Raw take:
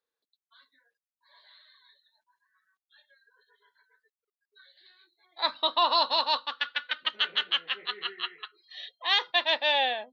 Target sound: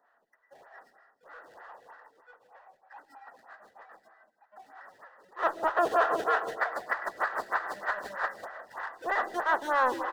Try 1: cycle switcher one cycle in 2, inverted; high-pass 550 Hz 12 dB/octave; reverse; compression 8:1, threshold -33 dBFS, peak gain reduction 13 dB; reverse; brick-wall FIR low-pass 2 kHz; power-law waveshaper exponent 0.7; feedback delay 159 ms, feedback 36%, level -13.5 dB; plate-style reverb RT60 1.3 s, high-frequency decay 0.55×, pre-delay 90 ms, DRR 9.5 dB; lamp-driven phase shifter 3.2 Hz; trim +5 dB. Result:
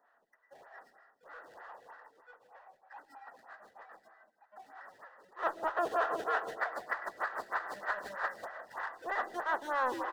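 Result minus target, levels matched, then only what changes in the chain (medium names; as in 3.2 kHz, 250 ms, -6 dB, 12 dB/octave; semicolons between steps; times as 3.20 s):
compression: peak gain reduction +7.5 dB
change: compression 8:1, threshold -24.5 dBFS, peak gain reduction 5.5 dB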